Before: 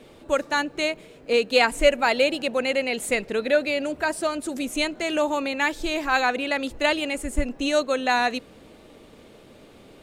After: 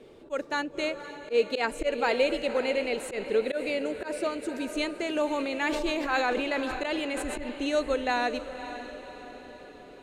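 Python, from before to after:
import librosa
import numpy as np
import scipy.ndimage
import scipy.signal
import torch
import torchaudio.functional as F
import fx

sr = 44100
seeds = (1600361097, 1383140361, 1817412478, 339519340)

y = fx.high_shelf(x, sr, hz=9100.0, db=-8.5)
y = fx.echo_diffused(y, sr, ms=543, feedback_pct=51, wet_db=-11.5)
y = fx.auto_swell(y, sr, attack_ms=101.0)
y = fx.peak_eq(y, sr, hz=410.0, db=9.5, octaves=0.52)
y = y + 10.0 ** (-23.0 / 20.0) * np.pad(y, (int(258 * sr / 1000.0), 0))[:len(y)]
y = fx.sustainer(y, sr, db_per_s=29.0, at=(5.28, 7.42))
y = y * 10.0 ** (-6.5 / 20.0)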